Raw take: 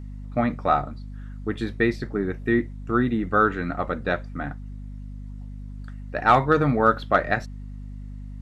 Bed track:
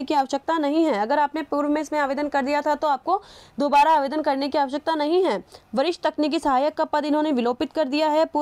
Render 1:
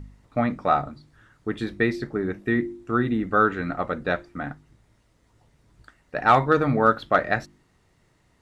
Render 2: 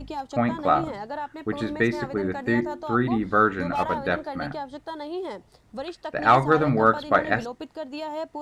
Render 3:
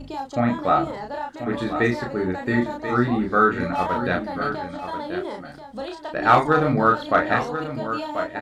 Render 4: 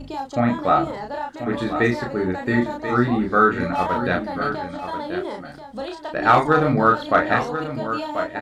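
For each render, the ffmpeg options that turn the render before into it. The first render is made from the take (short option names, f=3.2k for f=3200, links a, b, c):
-af "bandreject=f=50:t=h:w=4,bandreject=f=100:t=h:w=4,bandreject=f=150:t=h:w=4,bandreject=f=200:t=h:w=4,bandreject=f=250:t=h:w=4,bandreject=f=300:t=h:w=4,bandreject=f=350:t=h:w=4"
-filter_complex "[1:a]volume=-12dB[a];[0:a][a]amix=inputs=2:normalize=0"
-filter_complex "[0:a]asplit=2[a][b];[b]adelay=33,volume=-3dB[c];[a][c]amix=inputs=2:normalize=0,asplit=2[d][e];[e]aecho=0:1:1036:0.316[f];[d][f]amix=inputs=2:normalize=0"
-af "volume=1.5dB,alimiter=limit=-3dB:level=0:latency=1"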